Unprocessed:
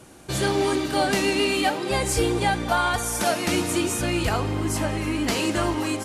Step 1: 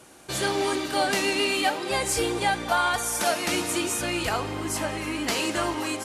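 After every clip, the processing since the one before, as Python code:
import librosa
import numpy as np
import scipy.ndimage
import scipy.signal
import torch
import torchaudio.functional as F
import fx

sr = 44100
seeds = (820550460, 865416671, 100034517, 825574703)

y = fx.low_shelf(x, sr, hz=280.0, db=-11.0)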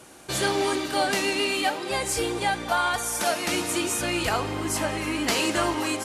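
y = fx.rider(x, sr, range_db=4, speed_s=2.0)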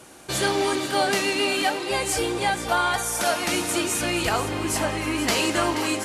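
y = x + 10.0 ** (-11.0 / 20.0) * np.pad(x, (int(479 * sr / 1000.0), 0))[:len(x)]
y = y * librosa.db_to_amplitude(1.5)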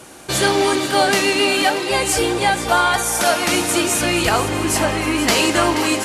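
y = x + 10.0 ** (-17.0 / 20.0) * np.pad(x, (int(638 * sr / 1000.0), 0))[:len(x)]
y = y * librosa.db_to_amplitude(6.5)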